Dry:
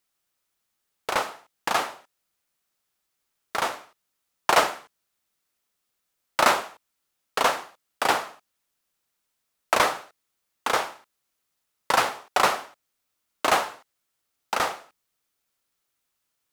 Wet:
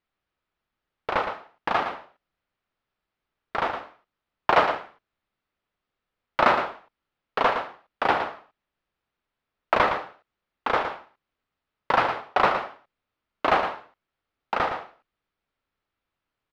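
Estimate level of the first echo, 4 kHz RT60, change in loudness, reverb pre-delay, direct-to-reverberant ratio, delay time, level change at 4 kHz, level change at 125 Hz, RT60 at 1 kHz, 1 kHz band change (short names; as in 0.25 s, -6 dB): -8.5 dB, none, 0.0 dB, none, none, 0.114 s, -5.5 dB, +4.5 dB, none, +1.0 dB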